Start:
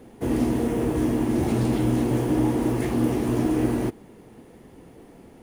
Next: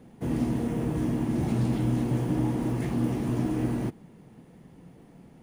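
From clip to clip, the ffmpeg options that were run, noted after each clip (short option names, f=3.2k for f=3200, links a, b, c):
-af "equalizer=f=160:t=o:w=0.67:g=11,equalizer=f=400:t=o:w=0.67:g=-4,equalizer=f=16k:t=o:w=0.67:g=-7,volume=-6dB"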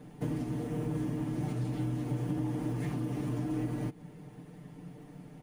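-af "acompressor=threshold=-33dB:ratio=6,aecho=1:1:6.7:0.75"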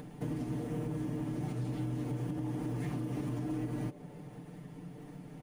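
-filter_complex "[0:a]asplit=5[a][b][c][d][e];[b]adelay=154,afreqshift=140,volume=-21dB[f];[c]adelay=308,afreqshift=280,volume=-26.5dB[g];[d]adelay=462,afreqshift=420,volume=-32dB[h];[e]adelay=616,afreqshift=560,volume=-37.5dB[i];[a][f][g][h][i]amix=inputs=5:normalize=0,acompressor=mode=upward:threshold=-41dB:ratio=2.5,alimiter=level_in=2.5dB:limit=-24dB:level=0:latency=1:release=129,volume=-2.5dB,volume=-1dB"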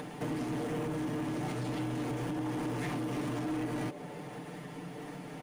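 -filter_complex "[0:a]asplit=2[a][b];[b]highpass=f=720:p=1,volume=19dB,asoftclip=type=tanh:threshold=-27dB[c];[a][c]amix=inputs=2:normalize=0,lowpass=f=6.3k:p=1,volume=-6dB"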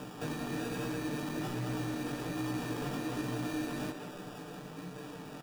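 -filter_complex "[0:a]acrusher=samples=21:mix=1:aa=0.000001,flanger=delay=15.5:depth=5.6:speed=1.2,asplit=2[a][b];[b]adelay=190,highpass=300,lowpass=3.4k,asoftclip=type=hard:threshold=-37.5dB,volume=-6dB[c];[a][c]amix=inputs=2:normalize=0,volume=1dB"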